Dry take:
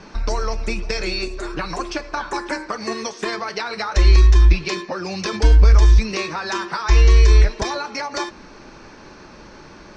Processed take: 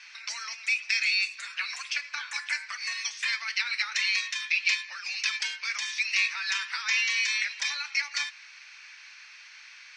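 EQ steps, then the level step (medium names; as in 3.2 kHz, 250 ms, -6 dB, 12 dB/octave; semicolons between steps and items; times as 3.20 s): ladder high-pass 1.9 kHz, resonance 50%; +7.0 dB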